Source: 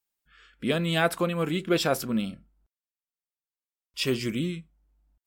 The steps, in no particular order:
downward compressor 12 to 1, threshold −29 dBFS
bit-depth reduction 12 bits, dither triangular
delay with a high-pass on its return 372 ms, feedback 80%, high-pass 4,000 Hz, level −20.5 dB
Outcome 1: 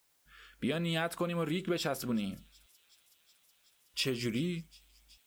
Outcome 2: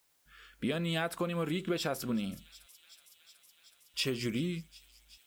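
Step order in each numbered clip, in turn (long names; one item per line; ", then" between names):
downward compressor, then bit-depth reduction, then delay with a high-pass on its return
delay with a high-pass on its return, then downward compressor, then bit-depth reduction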